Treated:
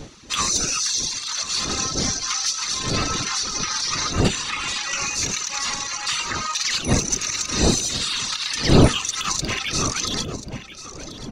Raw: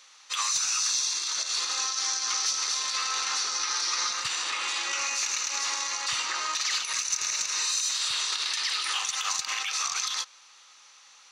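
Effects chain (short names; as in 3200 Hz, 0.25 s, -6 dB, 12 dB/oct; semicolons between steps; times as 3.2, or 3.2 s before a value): wind noise 320 Hz -32 dBFS; reverb removal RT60 1.6 s; on a send: echo 1.037 s -14 dB; on the sum: gain +6.5 dB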